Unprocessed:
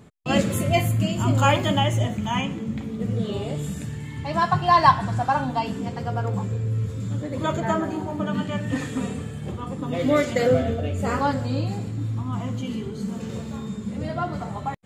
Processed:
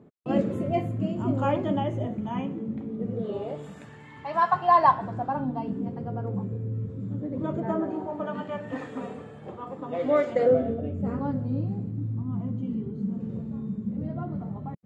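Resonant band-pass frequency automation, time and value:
resonant band-pass, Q 1
0:03.05 350 Hz
0:03.82 980 Hz
0:04.52 980 Hz
0:05.47 260 Hz
0:07.50 260 Hz
0:08.23 710 Hz
0:10.23 710 Hz
0:11.03 190 Hz

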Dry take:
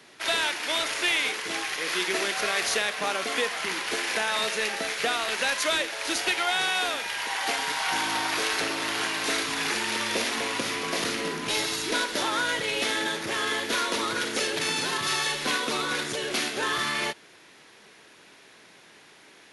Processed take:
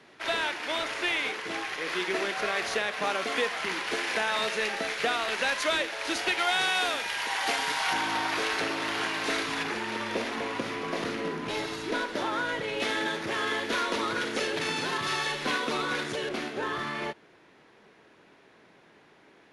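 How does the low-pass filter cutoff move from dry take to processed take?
low-pass filter 6 dB per octave
2,000 Hz
from 0:02.93 3,400 Hz
from 0:06.39 7,000 Hz
from 0:07.93 2,900 Hz
from 0:09.63 1,300 Hz
from 0:12.80 2,600 Hz
from 0:16.29 1,000 Hz

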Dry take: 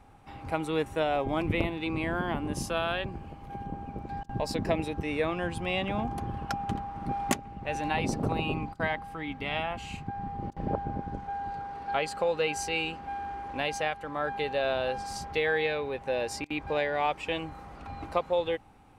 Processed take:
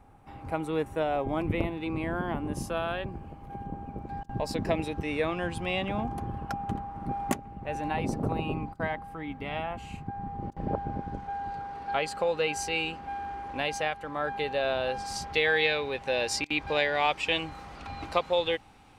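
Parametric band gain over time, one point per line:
parametric band 4,300 Hz 2.4 octaves
0:03.99 −6.5 dB
0:04.79 +1 dB
0:05.64 +1 dB
0:06.44 −7.5 dB
0:10.23 −7.5 dB
0:10.96 +1 dB
0:14.81 +1 dB
0:15.61 +9.5 dB

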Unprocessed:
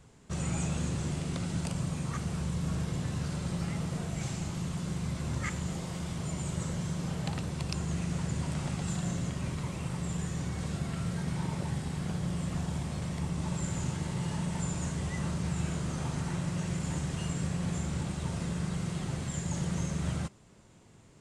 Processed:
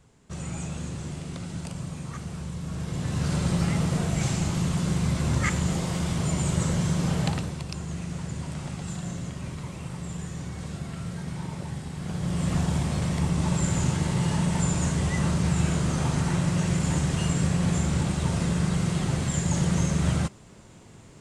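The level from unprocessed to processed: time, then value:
0:02.68 −1.5 dB
0:03.34 +9 dB
0:07.23 +9 dB
0:07.65 −0.5 dB
0:11.95 −0.5 dB
0:12.50 +8.5 dB

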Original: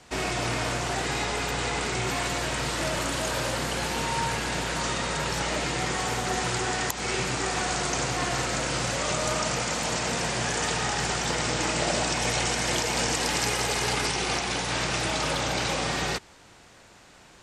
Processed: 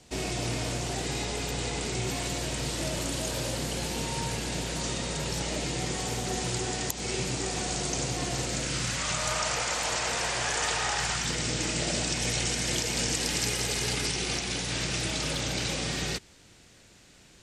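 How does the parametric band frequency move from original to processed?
parametric band −11.5 dB 1.8 octaves
0:08.47 1,300 Hz
0:09.57 200 Hz
0:10.95 200 Hz
0:11.38 970 Hz

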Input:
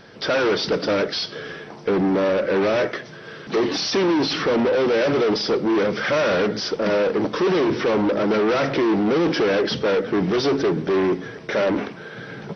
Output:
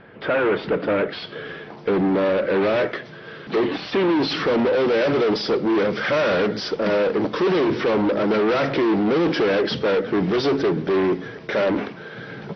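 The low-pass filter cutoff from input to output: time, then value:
low-pass filter 24 dB per octave
0:00.95 2,700 Hz
0:01.67 4,300 Hz
0:03.59 4,300 Hz
0:03.78 3,000 Hz
0:04.35 5,000 Hz

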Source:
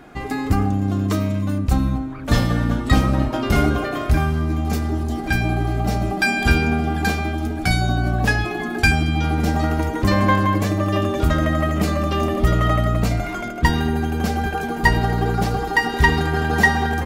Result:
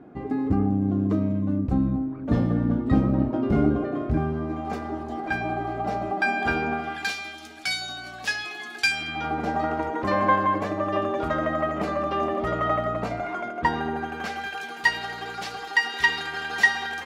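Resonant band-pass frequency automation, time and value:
resonant band-pass, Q 0.84
0:04.13 270 Hz
0:04.65 810 Hz
0:06.69 810 Hz
0:07.14 4,200 Hz
0:08.90 4,200 Hz
0:09.31 830 Hz
0:13.92 830 Hz
0:14.52 3,100 Hz

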